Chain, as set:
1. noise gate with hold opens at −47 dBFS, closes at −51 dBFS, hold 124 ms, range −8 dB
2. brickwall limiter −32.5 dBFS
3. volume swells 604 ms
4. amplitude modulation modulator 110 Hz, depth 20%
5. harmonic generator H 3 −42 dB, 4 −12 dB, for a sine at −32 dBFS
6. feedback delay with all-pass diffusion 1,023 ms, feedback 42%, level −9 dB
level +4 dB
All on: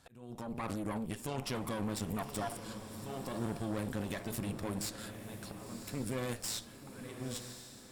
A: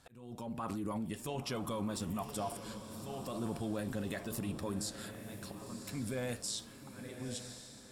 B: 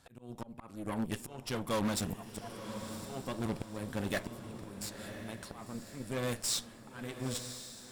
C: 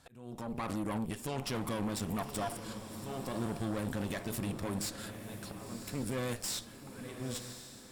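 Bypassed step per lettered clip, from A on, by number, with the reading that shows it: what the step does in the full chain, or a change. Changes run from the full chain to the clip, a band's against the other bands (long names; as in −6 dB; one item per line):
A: 5, 2 kHz band −1.5 dB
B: 2, average gain reduction 4.0 dB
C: 4, change in integrated loudness +1.5 LU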